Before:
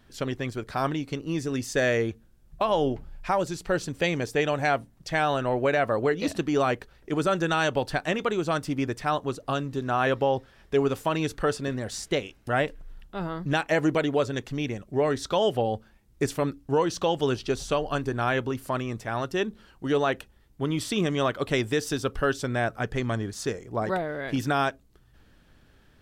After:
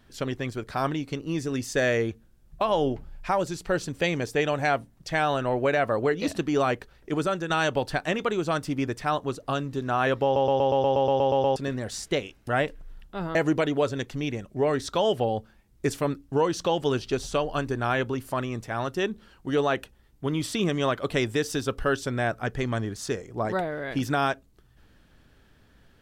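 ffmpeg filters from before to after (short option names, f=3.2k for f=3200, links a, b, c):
-filter_complex "[0:a]asplit=14[a][b][c][d][e][f][g][h][i][j][k][l][m][n];[a]atrim=end=7.5,asetpts=PTS-STARTPTS,afade=t=out:st=7.15:d=0.35:silence=0.446684[o];[b]atrim=start=7.5:end=10.362,asetpts=PTS-STARTPTS,afade=t=in:d=0.004:c=hsin:silence=0.446684[p];[c]atrim=start=10.238:end=10.362[q];[d]atrim=start=10.238:end=10.362[r];[e]atrim=start=10.238:end=10.362[s];[f]atrim=start=10.238:end=10.362[t];[g]atrim=start=10.238:end=10.362[u];[h]atrim=start=10.238:end=10.362[v];[i]atrim=start=10.238:end=10.362[w];[j]atrim=start=10.238:end=10.362[x];[k]atrim=start=10.238:end=10.362[y];[l]atrim=start=10.238:end=10.362[z];[m]atrim=start=11.558:end=13.352[aa];[n]atrim=start=13.718[ab];[o][p]concat=n=2:v=0:a=1[ac];[ac][q]acrossfade=d=0.004:c1=hsin:c2=hsin[ad];[ad][r]acrossfade=d=0.004:c1=hsin:c2=hsin[ae];[ae][s]acrossfade=d=0.004:c1=hsin:c2=hsin[af];[af][t]acrossfade=d=0.004:c1=hsin:c2=hsin[ag];[ag][u]acrossfade=d=0.004:c1=hsin:c2=hsin[ah];[ah][v]acrossfade=d=0.004:c1=hsin:c2=hsin[ai];[ai][w]acrossfade=d=0.004:c1=hsin:c2=hsin[aj];[aj][x]acrossfade=d=0.004:c1=hsin:c2=hsin[ak];[ak][y]acrossfade=d=0.004:c1=hsin:c2=hsin[al];[al][z]acrossfade=d=0.004:c1=hsin:c2=hsin[am];[am][aa]acrossfade=d=0.004:c1=hsin:c2=hsin[an];[an][ab]acrossfade=d=0.004:c1=hsin:c2=hsin"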